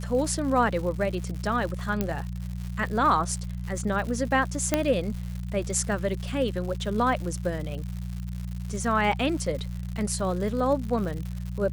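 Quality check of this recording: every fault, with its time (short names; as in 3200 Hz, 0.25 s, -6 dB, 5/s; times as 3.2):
crackle 180/s -34 dBFS
hum 60 Hz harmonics 3 -33 dBFS
2.01 pop -12 dBFS
4.74 pop -7 dBFS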